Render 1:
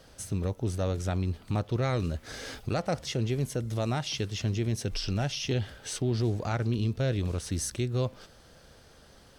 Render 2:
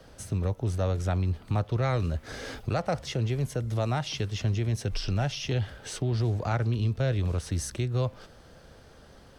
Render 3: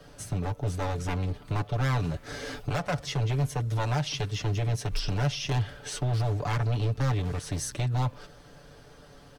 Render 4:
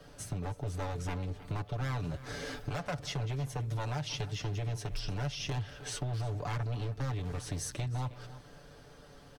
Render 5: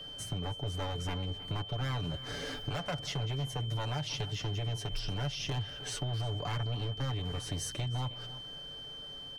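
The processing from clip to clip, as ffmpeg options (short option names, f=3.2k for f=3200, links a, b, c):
-filter_complex "[0:a]highshelf=f=2.5k:g=-7.5,acrossover=split=160|480|2800[a][b][c][d];[b]acompressor=threshold=-42dB:ratio=6[e];[a][e][c][d]amix=inputs=4:normalize=0,volume=4dB"
-af "aeval=exprs='0.0668*(abs(mod(val(0)/0.0668+3,4)-2)-1)':c=same,aecho=1:1:6.9:0.65"
-filter_complex "[0:a]acompressor=threshold=-31dB:ratio=2.5,asplit=2[a][b];[b]adelay=314.9,volume=-15dB,highshelf=f=4k:g=-7.08[c];[a][c]amix=inputs=2:normalize=0,volume=-3dB"
-af "aeval=exprs='val(0)+0.00708*sin(2*PI*3100*n/s)':c=same"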